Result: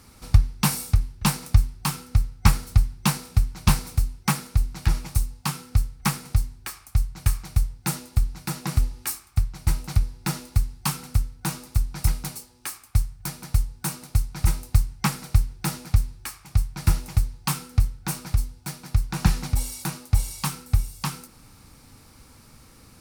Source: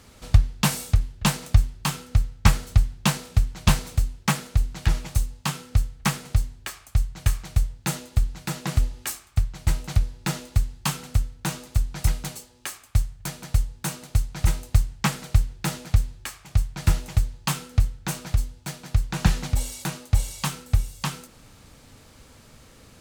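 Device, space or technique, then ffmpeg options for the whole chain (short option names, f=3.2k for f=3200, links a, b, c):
exciter from parts: -filter_complex "[0:a]asplit=2[a][b];[b]highpass=f=3k:w=0.5412,highpass=f=3k:w=1.3066,asoftclip=type=tanh:threshold=-18dB,volume=-4dB[c];[a][c]amix=inputs=2:normalize=0,superequalizer=7b=0.631:8b=0.501:11b=0.708:15b=0.562"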